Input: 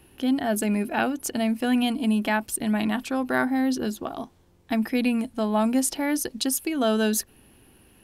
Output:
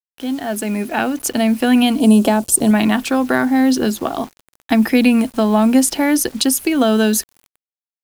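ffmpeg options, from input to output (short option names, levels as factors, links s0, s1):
-filter_complex "[0:a]dynaudnorm=f=180:g=11:m=5.96,lowshelf=f=210:g=-3.5,acrossover=split=310[s0][s1];[s1]acompressor=threshold=0.141:ratio=4[s2];[s0][s2]amix=inputs=2:normalize=0,acrusher=bits=6:mix=0:aa=0.000001,asettb=1/sr,asplit=3[s3][s4][s5];[s3]atrim=end=2.004[s6];[s4]atrim=start=2:end=2.71,asetpts=PTS-STARTPTS,afade=t=in:d=0.004:c=qsin,afade=t=out:st=0.706:d=0.004:c=qsin,equalizer=f=125:t=o:w=1:g=4,equalizer=f=500:t=o:w=1:g=7,equalizer=f=2000:t=o:w=1:g=-11,equalizer=f=8000:t=o:w=1:g=7[s7];[s5]atrim=start=2.706[s8];[s6][s7]acrossfade=d=0.004:c1=hsin:c2=qsin[s9];[s9][s8]acrossfade=d=0.004:c1=qsin:c2=hsin,volume=1.26"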